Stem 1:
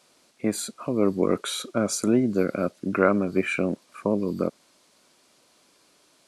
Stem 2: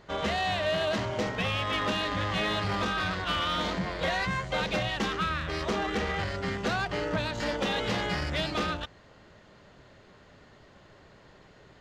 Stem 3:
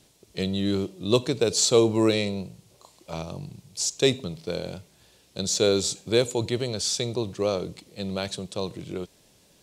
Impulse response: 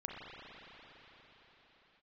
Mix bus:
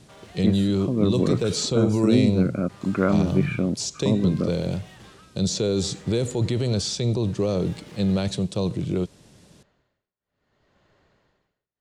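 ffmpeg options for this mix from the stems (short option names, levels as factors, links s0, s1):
-filter_complex "[0:a]bass=f=250:g=13,treble=f=4000:g=-13,volume=0.596[s0];[1:a]alimiter=level_in=1.06:limit=0.0631:level=0:latency=1,volume=0.944,tremolo=f=0.64:d=0.98,asoftclip=type=hard:threshold=0.0119,volume=0.398,asplit=3[s1][s2][s3];[s1]atrim=end=1.68,asetpts=PTS-STARTPTS,afade=t=out:st=1.676:d=0.004:c=hsin[s4];[s2]atrim=start=1.68:end=2.69,asetpts=PTS-STARTPTS,volume=0[s5];[s3]atrim=start=2.69,asetpts=PTS-STARTPTS,afade=t=in:d=0.004:c=hsin[s6];[s4][s5][s6]concat=n=3:v=0:a=1[s7];[2:a]lowpass=f=11000:w=0.5412,lowpass=f=11000:w=1.3066,equalizer=f=130:w=0.44:g=11,acrossover=split=520|5400[s8][s9][s10];[s8]acompressor=threshold=0.126:ratio=4[s11];[s9]acompressor=threshold=0.0398:ratio=4[s12];[s10]acompressor=threshold=0.0112:ratio=4[s13];[s11][s12][s13]amix=inputs=3:normalize=0,volume=1.26[s14];[s7][s14]amix=inputs=2:normalize=0,alimiter=limit=0.178:level=0:latency=1:release=21,volume=1[s15];[s0][s15]amix=inputs=2:normalize=0"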